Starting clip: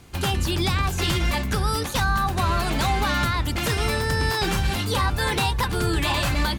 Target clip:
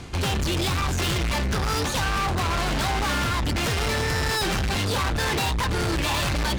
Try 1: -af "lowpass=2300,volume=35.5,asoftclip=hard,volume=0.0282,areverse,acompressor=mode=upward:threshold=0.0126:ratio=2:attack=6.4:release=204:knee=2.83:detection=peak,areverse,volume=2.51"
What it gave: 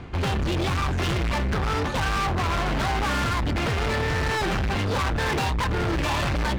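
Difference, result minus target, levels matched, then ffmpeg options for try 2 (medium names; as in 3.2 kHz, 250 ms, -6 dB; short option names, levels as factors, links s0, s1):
8 kHz band -6.5 dB
-af "lowpass=7100,volume=35.5,asoftclip=hard,volume=0.0282,areverse,acompressor=mode=upward:threshold=0.0126:ratio=2:attack=6.4:release=204:knee=2.83:detection=peak,areverse,volume=2.51"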